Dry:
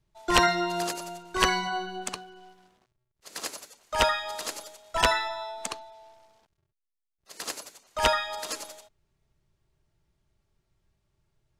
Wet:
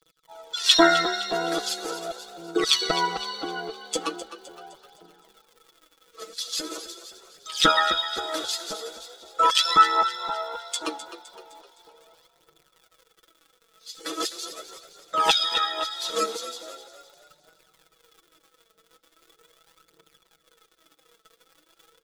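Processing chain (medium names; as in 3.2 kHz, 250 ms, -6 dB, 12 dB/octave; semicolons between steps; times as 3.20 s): treble shelf 9.7 kHz -6.5 dB; comb 7 ms, depth 47%; LFO high-pass square 3.6 Hz 260–4100 Hz; crackle 160 per s -44 dBFS; granular stretch 1.9×, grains 26 ms; phaser 0.4 Hz, delay 4.7 ms, feedback 59%; small resonant body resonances 440/1300/3400 Hz, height 14 dB, ringing for 30 ms; on a send: frequency-shifting echo 257 ms, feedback 47%, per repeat +31 Hz, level -12.5 dB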